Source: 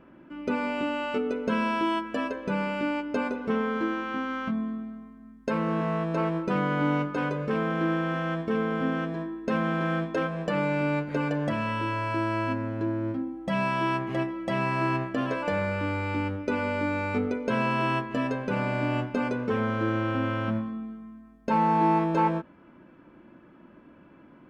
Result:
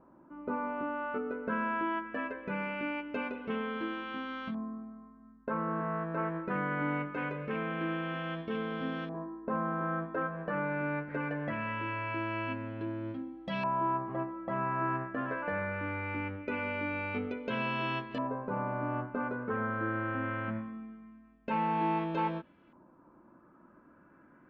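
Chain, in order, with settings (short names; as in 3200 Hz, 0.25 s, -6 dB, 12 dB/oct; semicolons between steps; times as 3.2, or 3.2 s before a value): LFO low-pass saw up 0.22 Hz 960–4000 Hz; gain -8.5 dB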